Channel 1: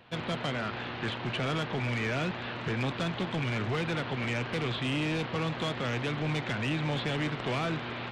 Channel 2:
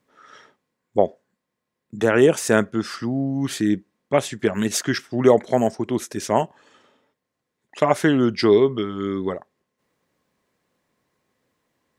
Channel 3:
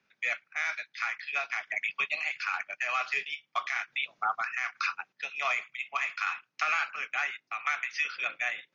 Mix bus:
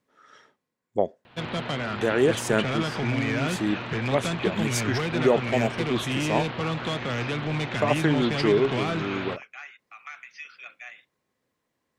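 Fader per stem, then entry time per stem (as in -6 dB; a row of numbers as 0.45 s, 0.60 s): +3.0 dB, -6.0 dB, -11.0 dB; 1.25 s, 0.00 s, 2.40 s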